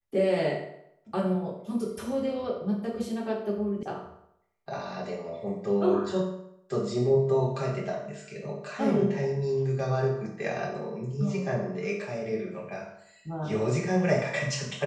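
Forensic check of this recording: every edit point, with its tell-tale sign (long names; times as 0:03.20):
0:03.83: cut off before it has died away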